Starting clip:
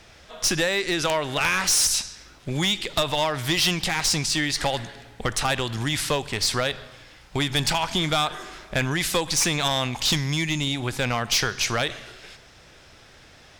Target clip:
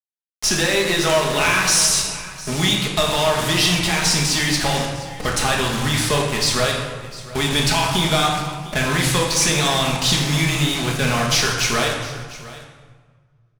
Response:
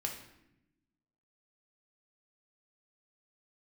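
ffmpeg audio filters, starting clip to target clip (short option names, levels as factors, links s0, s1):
-filter_complex "[0:a]acrusher=bits=4:mix=0:aa=0.000001,aecho=1:1:704:0.126[s0];[1:a]atrim=start_sample=2205,asetrate=22932,aresample=44100[s1];[s0][s1]afir=irnorm=-1:irlink=0"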